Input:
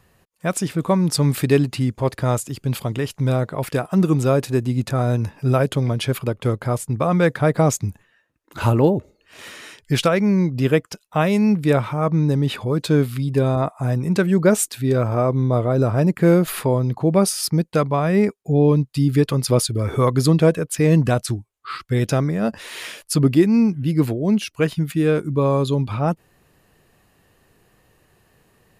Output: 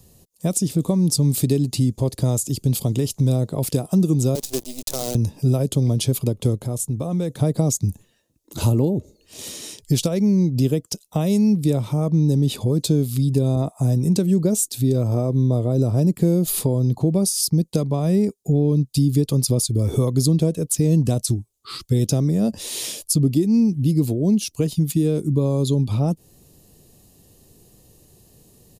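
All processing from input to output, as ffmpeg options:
ffmpeg -i in.wav -filter_complex "[0:a]asettb=1/sr,asplit=3[link_01][link_02][link_03];[link_01]atrim=end=4.354[link_04];[link_02]atrim=start=4.35:end=5.15,asetpts=PTS-STARTPTS,afade=type=in:duration=0.004:curve=qsin,afade=type=out:start_time=0.796:duration=0.004:curve=qsin,highpass=530,acrusher=bits=5:dc=4:mix=0:aa=0.000001[link_05];[link_03]atrim=start=5.146[link_06];[link_04][link_05]acrossfade=duration=0.004:curve1=hsin:curve2=qsin[link_07];[link_07][link_06]acrossfade=duration=0.004:curve1=qsin:curve2=hsin,asettb=1/sr,asplit=3[link_08][link_09][link_10];[link_08]atrim=end=6.574[link_11];[link_09]atrim=start=6.57:end=7.39,asetpts=PTS-STARTPTS,afade=type=in:duration=0.004:curve=qsin,afade=type=out:start_time=0.816:duration=0.004:curve=qsin,bandreject=frequency=4800:width=8.4,acompressor=threshold=-33dB:ratio=2:attack=3.2:release=140:knee=1:detection=peak[link_12];[link_10]atrim=start=7.386[link_13];[link_11][link_12]acrossfade=duration=0.004:curve1=hsin:curve2=qsin[link_14];[link_14][link_13]acrossfade=duration=0.004:curve1=qsin:curve2=hsin,acompressor=threshold=-24dB:ratio=2.5,firequalizer=gain_entry='entry(250,0);entry(1500,-21);entry(3600,-2);entry(6200,5)':delay=0.05:min_phase=1,acrossover=split=280[link_15][link_16];[link_16]acompressor=threshold=-28dB:ratio=2.5[link_17];[link_15][link_17]amix=inputs=2:normalize=0,volume=7dB" out.wav

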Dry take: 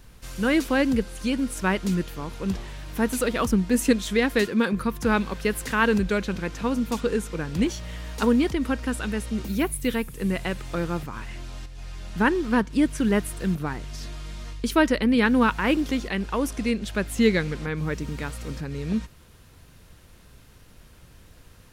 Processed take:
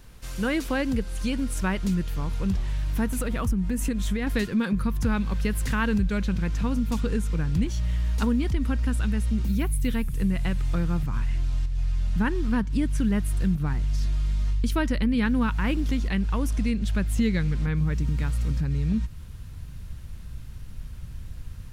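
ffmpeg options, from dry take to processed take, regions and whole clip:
ffmpeg -i in.wav -filter_complex "[0:a]asettb=1/sr,asplit=3[link_01][link_02][link_03];[link_01]atrim=end=3.064[link_04];[link_02]atrim=start=3.06:end=4.27,asetpts=PTS-STARTPTS,afade=type=in:duration=0.004:curve=qsin,afade=type=out:start_time=1.206:duration=0.004:curve=qsin,equalizer=frequency=4500:width_type=o:width=1.3:gain=-5.5,acompressor=threshold=-25dB:ratio=2.5:attack=3.2:release=140:knee=1:detection=peak[link_05];[link_03]atrim=start=4.266[link_06];[link_04][link_05]acrossfade=duration=0.004:curve1=hsin:curve2=qsin[link_07];[link_07][link_06]acrossfade=duration=0.004:curve1=qsin:curve2=hsin,asubboost=boost=6:cutoff=160,acompressor=threshold=-23dB:ratio=2.5" out.wav

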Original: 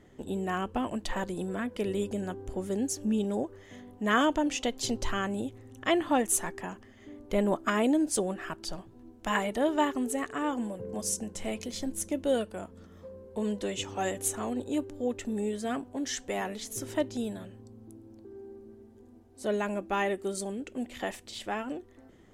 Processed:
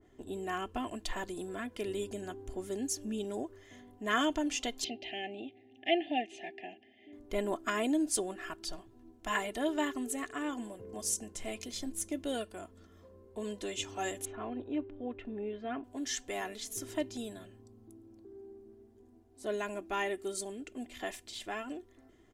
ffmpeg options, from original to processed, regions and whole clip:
ffmpeg -i in.wav -filter_complex "[0:a]asettb=1/sr,asplit=3[link_01][link_02][link_03];[link_01]atrim=end=4.844[link_04];[link_02]atrim=start=4.84:end=7.13,asetpts=PTS-STARTPTS,afade=type=in:duration=0.004:curve=qsin,afade=type=out:start_time=2.286:duration=0.004:curve=qsin,asuperstop=centerf=1200:order=8:qfactor=1.1,highpass=250,equalizer=frequency=490:width_type=q:width=4:gain=-7,equalizer=frequency=750:width_type=q:width=4:gain=6,equalizer=frequency=1200:width_type=q:width=4:gain=7,equalizer=frequency=2700:width_type=q:width=4:gain=7,lowpass=frequency=3400:width=0.5412,lowpass=frequency=3400:width=1.3066[link_05];[link_03]atrim=start=7.126[link_06];[link_04][link_05]acrossfade=duration=0.004:curve1=hsin:curve2=qsin[link_07];[link_07][link_06]acrossfade=duration=0.004:curve1=qsin:curve2=hsin,asettb=1/sr,asplit=3[link_08][link_09][link_10];[link_08]atrim=end=14.254[link_11];[link_09]atrim=start=14.25:end=15.84,asetpts=PTS-STARTPTS,afade=type=in:duration=0.004:curve=qsin,afade=type=out:start_time=1.586:duration=0.004:curve=qsin,lowpass=frequency=2700:width=0.5412,lowpass=frequency=2700:width=1.3066,equalizer=frequency=1900:width=4.3:gain=-4[link_12];[link_10]atrim=start=15.836[link_13];[link_11][link_12]acrossfade=duration=0.004:curve1=hsin:curve2=qsin[link_14];[link_14][link_13]acrossfade=duration=0.004:curve1=qsin:curve2=hsin,aecho=1:1:2.9:0.51,adynamicequalizer=threshold=0.00631:dfrequency=1700:dqfactor=0.7:tfrequency=1700:tqfactor=0.7:attack=5:release=100:ratio=0.375:range=2.5:mode=boostabove:tftype=highshelf,volume=-7dB" out.wav

